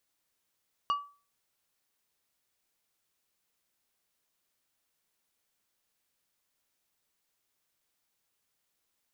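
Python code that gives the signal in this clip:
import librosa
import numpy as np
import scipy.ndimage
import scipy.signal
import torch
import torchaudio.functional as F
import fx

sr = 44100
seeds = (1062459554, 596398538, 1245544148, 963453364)

y = fx.strike_glass(sr, length_s=0.89, level_db=-22.5, body='plate', hz=1150.0, decay_s=0.36, tilt_db=10.5, modes=5)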